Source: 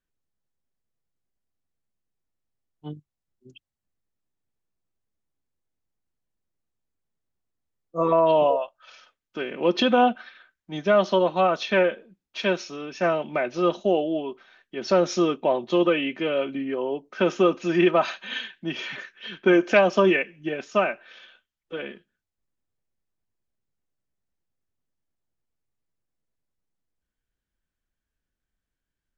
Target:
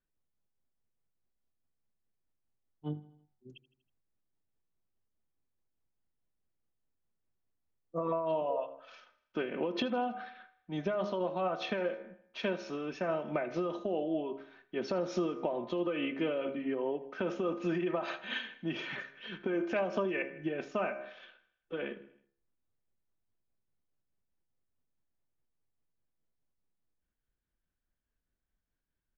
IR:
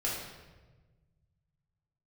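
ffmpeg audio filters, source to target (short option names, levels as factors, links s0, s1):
-filter_complex "[0:a]lowpass=f=1800:p=1,bandreject=f=68.25:t=h:w=4,bandreject=f=136.5:t=h:w=4,bandreject=f=204.75:t=h:w=4,bandreject=f=273:t=h:w=4,bandreject=f=341.25:t=h:w=4,bandreject=f=409.5:t=h:w=4,bandreject=f=477.75:t=h:w=4,bandreject=f=546:t=h:w=4,bandreject=f=614.25:t=h:w=4,bandreject=f=682.5:t=h:w=4,bandreject=f=750.75:t=h:w=4,bandreject=f=819:t=h:w=4,bandreject=f=887.25:t=h:w=4,bandreject=f=955.5:t=h:w=4,bandreject=f=1023.75:t=h:w=4,bandreject=f=1092:t=h:w=4,bandreject=f=1160.25:t=h:w=4,bandreject=f=1228.5:t=h:w=4,bandreject=f=1296.75:t=h:w=4,bandreject=f=1365:t=h:w=4,bandreject=f=1433.25:t=h:w=4,bandreject=f=1501.5:t=h:w=4,bandreject=f=1569.75:t=h:w=4,bandreject=f=1638:t=h:w=4,bandreject=f=1706.25:t=h:w=4,bandreject=f=1774.5:t=h:w=4,bandreject=f=1842.75:t=h:w=4,bandreject=f=1911:t=h:w=4,bandreject=f=1979.25:t=h:w=4,bandreject=f=2047.5:t=h:w=4,bandreject=f=2115.75:t=h:w=4,bandreject=f=2184:t=h:w=4,bandreject=f=2252.25:t=h:w=4,bandreject=f=2320.5:t=h:w=4,bandreject=f=2388.75:t=h:w=4,alimiter=limit=0.158:level=0:latency=1:release=61,acompressor=threshold=0.0398:ratio=6,tremolo=f=4.8:d=0.34,asplit=2[s0][s1];[s1]aecho=0:1:80|160|240|320:0.106|0.0583|0.032|0.0176[s2];[s0][s2]amix=inputs=2:normalize=0"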